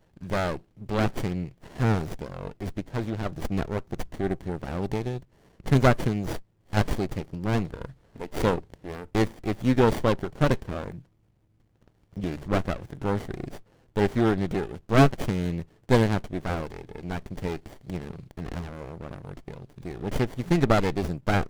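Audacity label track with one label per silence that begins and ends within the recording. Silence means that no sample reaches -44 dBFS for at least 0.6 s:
11.010000	11.880000	silence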